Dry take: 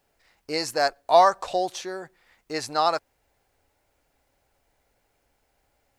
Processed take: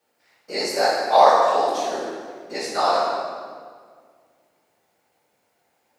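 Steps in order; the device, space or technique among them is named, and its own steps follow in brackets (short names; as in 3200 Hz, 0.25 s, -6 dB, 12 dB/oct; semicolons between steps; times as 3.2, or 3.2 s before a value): whispering ghost (whisperiser; HPF 240 Hz 12 dB/oct; reverb RT60 1.9 s, pre-delay 6 ms, DRR -5.5 dB); gain -3 dB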